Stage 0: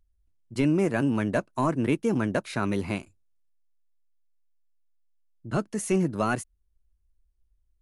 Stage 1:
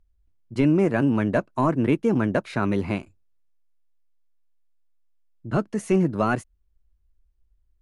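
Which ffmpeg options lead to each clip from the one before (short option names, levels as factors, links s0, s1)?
-af "lowpass=f=2400:p=1,volume=1.58"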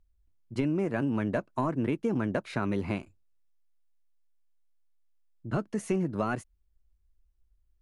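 -af "acompressor=threshold=0.0891:ratio=6,volume=0.668"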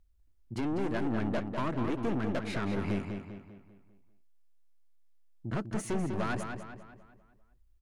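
-filter_complex "[0:a]aeval=exprs='(tanh(39.8*val(0)+0.4)-tanh(0.4))/39.8':c=same,asplit=2[s0][s1];[s1]adelay=198,lowpass=f=4400:p=1,volume=0.501,asplit=2[s2][s3];[s3]adelay=198,lowpass=f=4400:p=1,volume=0.46,asplit=2[s4][s5];[s5]adelay=198,lowpass=f=4400:p=1,volume=0.46,asplit=2[s6][s7];[s7]adelay=198,lowpass=f=4400:p=1,volume=0.46,asplit=2[s8][s9];[s9]adelay=198,lowpass=f=4400:p=1,volume=0.46,asplit=2[s10][s11];[s11]adelay=198,lowpass=f=4400:p=1,volume=0.46[s12];[s0][s2][s4][s6][s8][s10][s12]amix=inputs=7:normalize=0,volume=1.41"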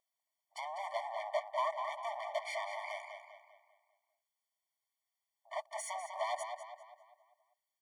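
-af "afftfilt=real='re*eq(mod(floor(b*sr/1024/600),2),1)':imag='im*eq(mod(floor(b*sr/1024/600),2),1)':win_size=1024:overlap=0.75,volume=1.41"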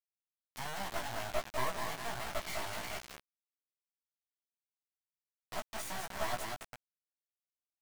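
-af "acrusher=bits=4:dc=4:mix=0:aa=0.000001,flanger=delay=15:depth=2.9:speed=1.3,volume=2"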